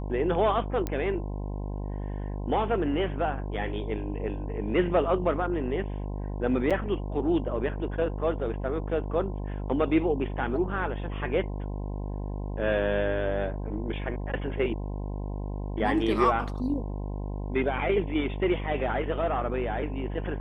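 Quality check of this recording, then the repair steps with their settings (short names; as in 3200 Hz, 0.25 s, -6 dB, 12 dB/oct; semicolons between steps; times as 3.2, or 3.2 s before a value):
buzz 50 Hz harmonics 21 -33 dBFS
0.87 pop -17 dBFS
6.7–6.71 gap 6.5 ms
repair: de-click; de-hum 50 Hz, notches 21; interpolate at 6.7, 6.5 ms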